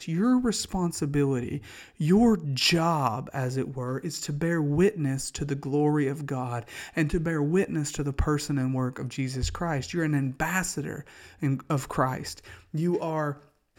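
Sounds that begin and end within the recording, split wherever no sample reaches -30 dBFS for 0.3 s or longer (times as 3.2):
2–10.99
11.43–12.33
12.74–13.33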